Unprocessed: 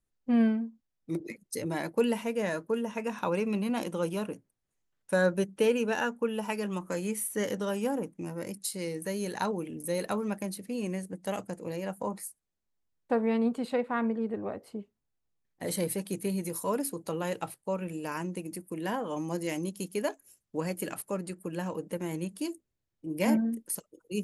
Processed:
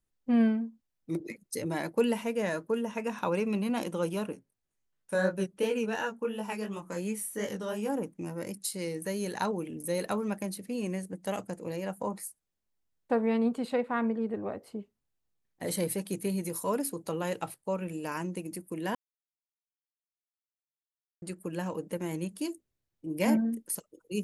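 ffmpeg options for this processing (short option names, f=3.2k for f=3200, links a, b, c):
-filter_complex "[0:a]asplit=3[a][b][c];[a]afade=t=out:st=4.32:d=0.02[d];[b]flanger=delay=18.5:depth=5.1:speed=2.8,afade=t=in:st=4.32:d=0.02,afade=t=out:st=7.88:d=0.02[e];[c]afade=t=in:st=7.88:d=0.02[f];[d][e][f]amix=inputs=3:normalize=0,asplit=3[g][h][i];[g]atrim=end=18.95,asetpts=PTS-STARTPTS,afade=t=out:st=18.946:d=0.004:c=hsin[j];[h]atrim=start=18.95:end=21.22,asetpts=PTS-STARTPTS,volume=0[k];[i]atrim=start=21.22,asetpts=PTS-STARTPTS,afade=t=in:d=0.004:c=hsin[l];[j][k][l]concat=n=3:v=0:a=1"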